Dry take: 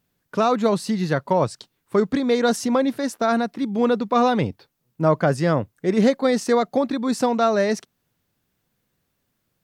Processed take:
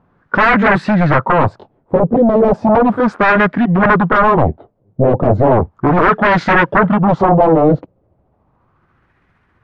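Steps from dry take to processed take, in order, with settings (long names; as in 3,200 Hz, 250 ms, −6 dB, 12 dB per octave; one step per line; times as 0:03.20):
pitch glide at a constant tempo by −6.5 semitones starting unshifted
sine wavefolder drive 15 dB, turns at −7 dBFS
auto-filter low-pass sine 0.35 Hz 550–1,800 Hz
level −2 dB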